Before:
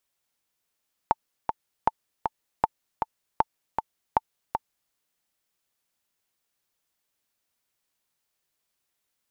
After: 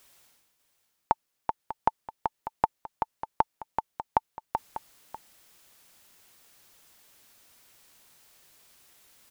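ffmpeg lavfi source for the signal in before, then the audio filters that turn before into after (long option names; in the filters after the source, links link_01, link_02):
-f lavfi -i "aevalsrc='pow(10,(-6-5.5*gte(mod(t,2*60/157),60/157))/20)*sin(2*PI*886*mod(t,60/157))*exp(-6.91*mod(t,60/157)/0.03)':duration=3.82:sample_rate=44100"
-af "areverse,acompressor=mode=upward:threshold=-42dB:ratio=2.5,areverse,aecho=1:1:595:0.224"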